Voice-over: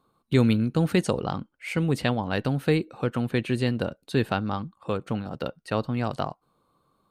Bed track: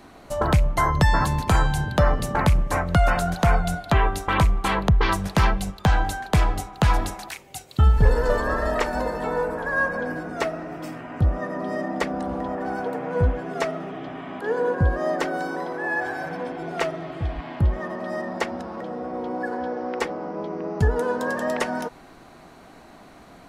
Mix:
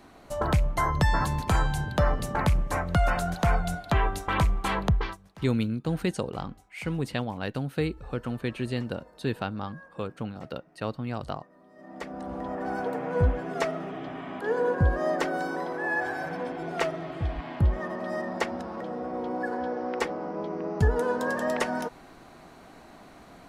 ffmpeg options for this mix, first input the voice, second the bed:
-filter_complex "[0:a]adelay=5100,volume=-5.5dB[a];[1:a]volume=20.5dB,afade=t=out:st=4.91:d=0.26:silence=0.0707946,afade=t=in:st=11.75:d=1.03:silence=0.0530884[b];[a][b]amix=inputs=2:normalize=0"

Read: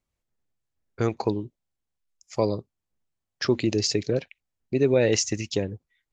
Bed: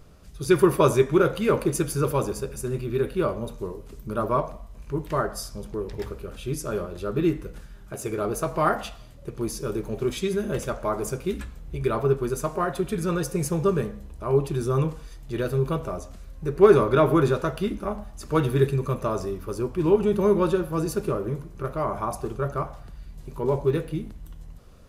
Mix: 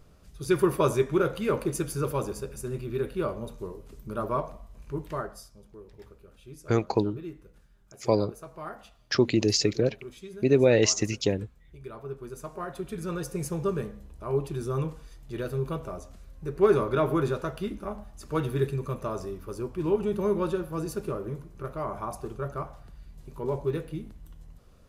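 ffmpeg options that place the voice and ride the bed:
-filter_complex "[0:a]adelay=5700,volume=0.5dB[a];[1:a]volume=6dB,afade=t=out:st=4.98:d=0.53:silence=0.251189,afade=t=in:st=12.02:d=1.33:silence=0.281838[b];[a][b]amix=inputs=2:normalize=0"

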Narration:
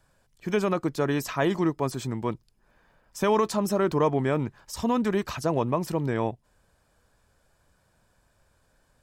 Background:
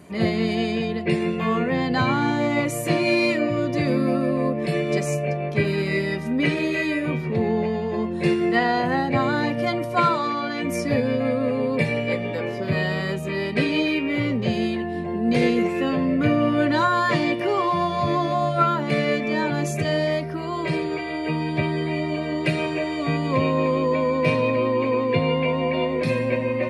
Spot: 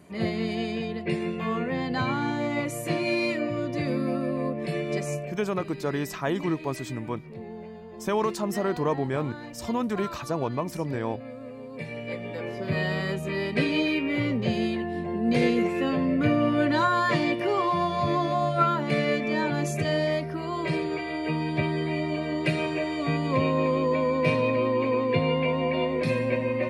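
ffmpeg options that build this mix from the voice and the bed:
-filter_complex "[0:a]adelay=4850,volume=-3dB[a];[1:a]volume=8.5dB,afade=t=out:st=5.15:d=0.2:silence=0.266073,afade=t=in:st=11.7:d=1.23:silence=0.188365[b];[a][b]amix=inputs=2:normalize=0"

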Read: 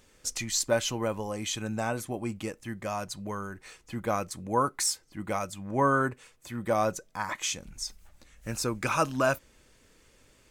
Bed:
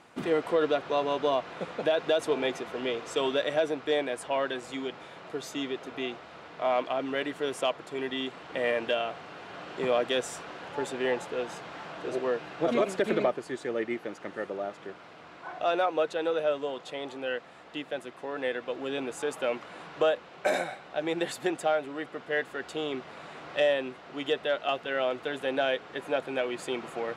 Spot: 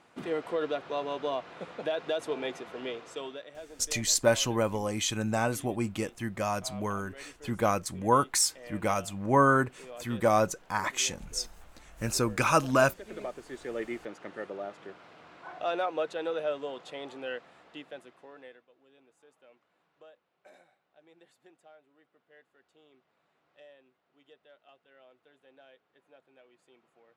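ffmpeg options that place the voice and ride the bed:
-filter_complex "[0:a]adelay=3550,volume=2.5dB[a];[1:a]volume=9.5dB,afade=t=out:st=2.87:d=0.6:silence=0.211349,afade=t=in:st=13.05:d=0.73:silence=0.177828,afade=t=out:st=17.23:d=1.43:silence=0.0501187[b];[a][b]amix=inputs=2:normalize=0"

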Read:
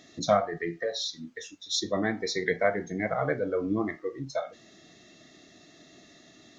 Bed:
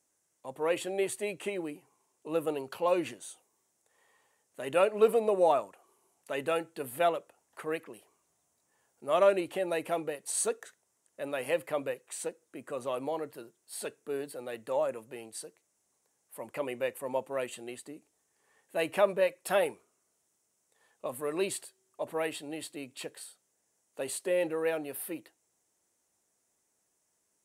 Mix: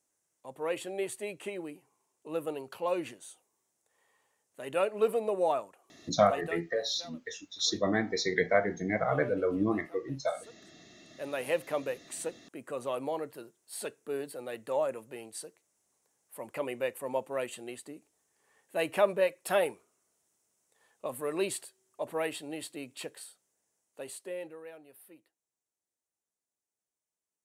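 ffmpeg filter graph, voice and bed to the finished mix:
-filter_complex "[0:a]adelay=5900,volume=-0.5dB[a];[1:a]volume=18.5dB,afade=t=out:st=6.29:d=0.38:silence=0.11885,afade=t=in:st=10.62:d=0.78:silence=0.0794328,afade=t=out:st=23.05:d=1.62:silence=0.141254[b];[a][b]amix=inputs=2:normalize=0"

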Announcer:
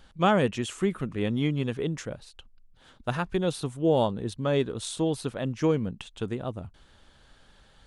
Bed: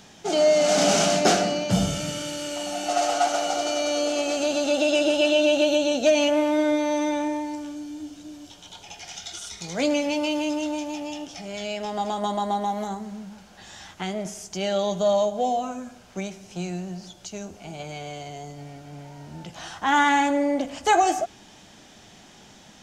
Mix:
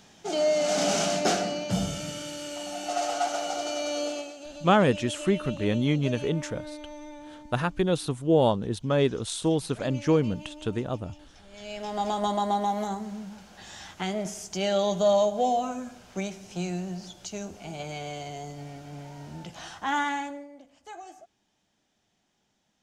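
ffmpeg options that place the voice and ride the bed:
-filter_complex "[0:a]adelay=4450,volume=2dB[a];[1:a]volume=12.5dB,afade=t=out:st=4.06:d=0.27:silence=0.223872,afade=t=in:st=11.5:d=0.58:silence=0.125893,afade=t=out:st=19.25:d=1.23:silence=0.0630957[b];[a][b]amix=inputs=2:normalize=0"

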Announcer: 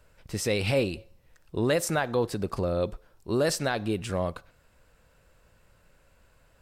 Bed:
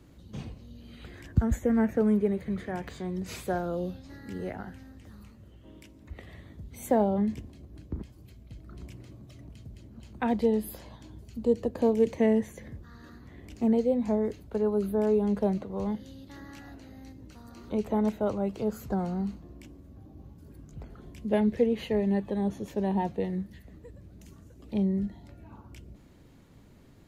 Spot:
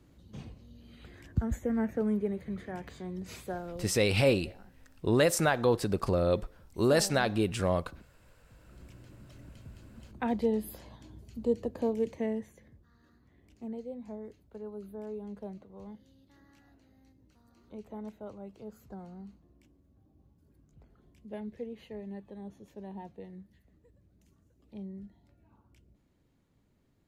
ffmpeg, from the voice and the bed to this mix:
-filter_complex "[0:a]adelay=3500,volume=0.5dB[a];[1:a]volume=7.5dB,afade=t=out:st=3.32:d=0.81:silence=0.281838,afade=t=in:st=8.44:d=0.9:silence=0.223872,afade=t=out:st=11.45:d=1.28:silence=0.251189[b];[a][b]amix=inputs=2:normalize=0"

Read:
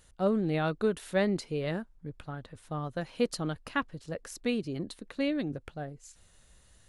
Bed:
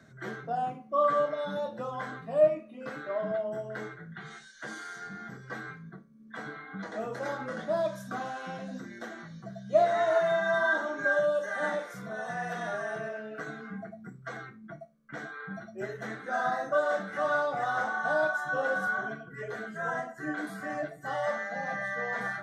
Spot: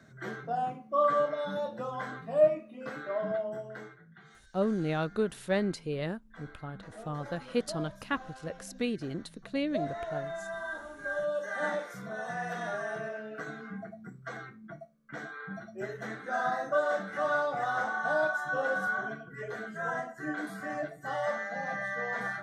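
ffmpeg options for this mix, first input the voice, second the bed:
-filter_complex "[0:a]adelay=4350,volume=-1.5dB[a];[1:a]volume=10dB,afade=t=out:st=3.33:d=0.7:silence=0.281838,afade=t=in:st=10.98:d=0.65:silence=0.298538[b];[a][b]amix=inputs=2:normalize=0"

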